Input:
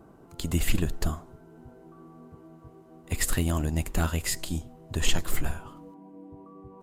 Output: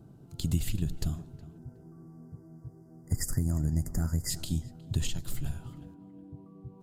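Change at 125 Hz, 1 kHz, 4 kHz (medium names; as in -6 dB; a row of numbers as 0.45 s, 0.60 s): 0.0 dB, -14.5 dB, -7.0 dB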